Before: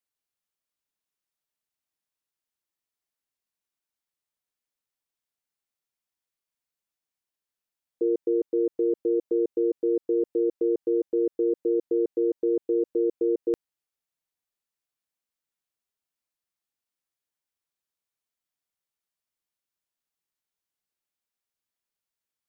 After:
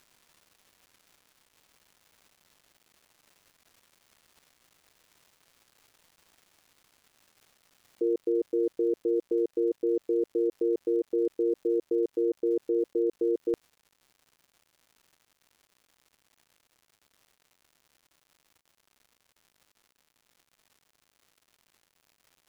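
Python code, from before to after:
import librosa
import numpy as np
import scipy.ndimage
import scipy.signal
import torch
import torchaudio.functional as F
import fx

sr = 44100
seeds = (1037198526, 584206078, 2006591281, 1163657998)

y = fx.dmg_crackle(x, sr, seeds[0], per_s=fx.steps((0.0, 550.0), (8.02, 210.0)), level_db=-47.0)
y = F.gain(torch.from_numpy(y), -2.5).numpy()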